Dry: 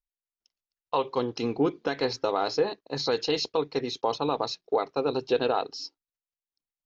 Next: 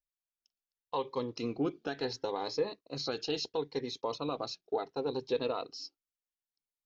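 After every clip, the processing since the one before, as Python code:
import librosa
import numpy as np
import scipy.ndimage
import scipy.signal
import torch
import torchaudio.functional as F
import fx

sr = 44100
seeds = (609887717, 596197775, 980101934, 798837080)

y = fx.notch_cascade(x, sr, direction='rising', hz=0.72)
y = y * 10.0 ** (-6.0 / 20.0)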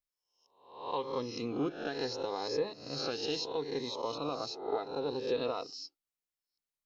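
y = fx.spec_swells(x, sr, rise_s=0.63)
y = y * 10.0 ** (-2.5 / 20.0)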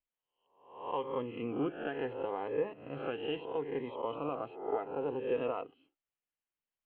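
y = scipy.signal.sosfilt(scipy.signal.cheby1(8, 1.0, 3200.0, 'lowpass', fs=sr, output='sos'), x)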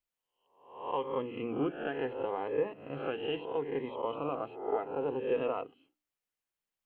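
y = fx.hum_notches(x, sr, base_hz=60, count=5)
y = y * 10.0 ** (2.0 / 20.0)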